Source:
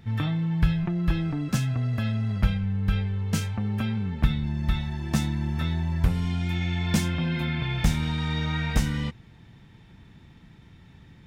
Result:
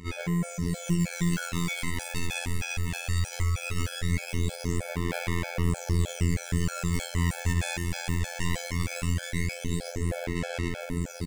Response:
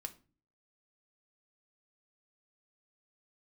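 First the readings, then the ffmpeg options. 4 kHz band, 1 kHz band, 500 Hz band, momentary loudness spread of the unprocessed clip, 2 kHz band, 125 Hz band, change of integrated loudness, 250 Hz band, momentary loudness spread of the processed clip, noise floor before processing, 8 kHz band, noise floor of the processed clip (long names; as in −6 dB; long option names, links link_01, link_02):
−1.0 dB, −1.0 dB, +4.0 dB, 3 LU, +1.5 dB, −3.5 dB, −3.5 dB, −3.5 dB, 4 LU, −52 dBFS, +5.5 dB, −40 dBFS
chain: -af "volume=25.5dB,asoftclip=hard,volume=-25.5dB,aecho=1:1:430|817|1165|1479|1761:0.631|0.398|0.251|0.158|0.1,acrusher=samples=37:mix=1:aa=0.000001,dynaudnorm=framelen=300:gausssize=5:maxgain=16dB,aphaser=in_gain=1:out_gain=1:delay=1.2:decay=0.64:speed=0.19:type=sinusoidal,equalizer=frequency=125:width_type=o:width=1:gain=-12,equalizer=frequency=500:width_type=o:width=1:gain=4,equalizer=frequency=1000:width_type=o:width=1:gain=-11,equalizer=frequency=2000:width_type=o:width=1:gain=9,equalizer=frequency=8000:width_type=o:width=1:gain=10,aeval=exprs='0.501*(abs(mod(val(0)/0.501+3,4)-2)-1)':channel_layout=same,highshelf=frequency=7800:gain=-5,areverse,acompressor=threshold=-25dB:ratio=16,areverse,afftfilt=real='hypot(re,im)*cos(PI*b)':imag='0':win_size=2048:overlap=0.75,afftfilt=real='re*gt(sin(2*PI*3.2*pts/sr)*(1-2*mod(floor(b*sr/1024/440),2)),0)':imag='im*gt(sin(2*PI*3.2*pts/sr)*(1-2*mod(floor(b*sr/1024/440),2)),0)':win_size=1024:overlap=0.75,volume=5dB"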